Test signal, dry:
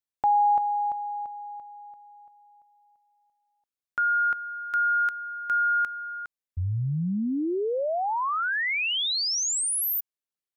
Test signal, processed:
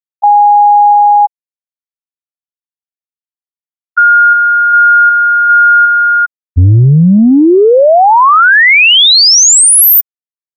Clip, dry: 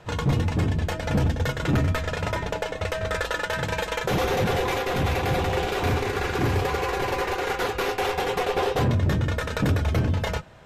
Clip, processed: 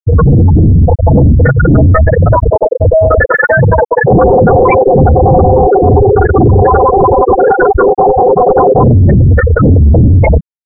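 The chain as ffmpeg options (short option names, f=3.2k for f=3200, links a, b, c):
-af "afftfilt=real='re*gte(hypot(re,im),0.2)':imag='im*gte(hypot(re,im),0.2)':win_size=1024:overlap=0.75,apsyclip=31dB,volume=-2dB"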